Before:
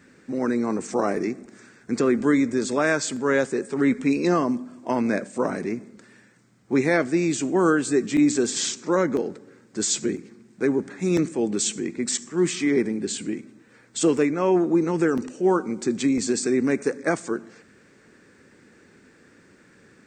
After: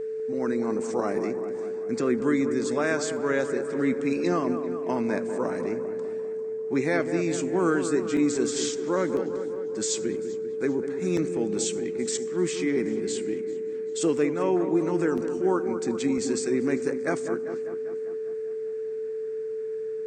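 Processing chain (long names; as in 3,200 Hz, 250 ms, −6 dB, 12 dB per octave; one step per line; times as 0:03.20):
steady tone 440 Hz −24 dBFS
delay with a low-pass on its return 198 ms, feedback 62%, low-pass 1,600 Hz, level −9 dB
feedback echo with a swinging delay time 393 ms, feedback 44%, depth 78 cents, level −23 dB
level −5 dB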